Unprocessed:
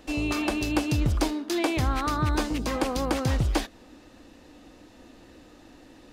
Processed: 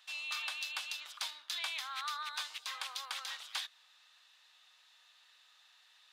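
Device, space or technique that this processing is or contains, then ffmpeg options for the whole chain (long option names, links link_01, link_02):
headphones lying on a table: -filter_complex "[0:a]highpass=frequency=1100:width=0.5412,highpass=frequency=1100:width=1.3066,equalizer=frequency=3600:width_type=o:width=0.59:gain=10,asettb=1/sr,asplit=3[link_01][link_02][link_03];[link_01]atrim=end=2.414[link_04];[link_02]atrim=start=2.41:end=3.17,asetpts=PTS-STARTPTS,afade=type=in:duration=0.004:curve=qsin,afade=type=out:start_time=0.756:duration=0.004:curve=qsin,highpass=360[link_05];[link_03]atrim=start=3.166[link_06];[link_04][link_05]acrossfade=duration=0.004:curve1=hsin:curve2=qsin[link_07];[link_07][link_06]acrossfade=duration=0.004:curve1=qsin:curve2=hsin,volume=-9dB"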